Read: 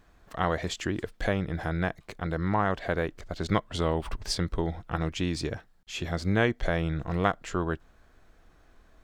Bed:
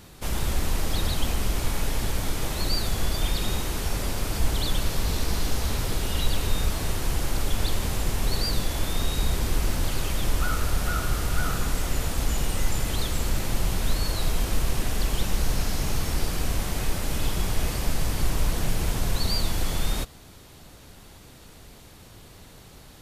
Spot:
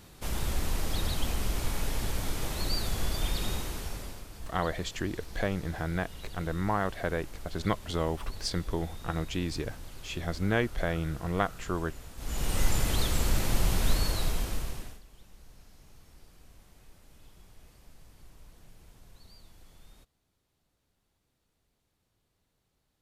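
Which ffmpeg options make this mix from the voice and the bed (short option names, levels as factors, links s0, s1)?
-filter_complex "[0:a]adelay=4150,volume=0.708[s0];[1:a]volume=4.47,afade=t=out:st=3.46:d=0.81:silence=0.199526,afade=t=in:st=12.17:d=0.44:silence=0.125893,afade=t=out:st=13.92:d=1.09:silence=0.0375837[s1];[s0][s1]amix=inputs=2:normalize=0"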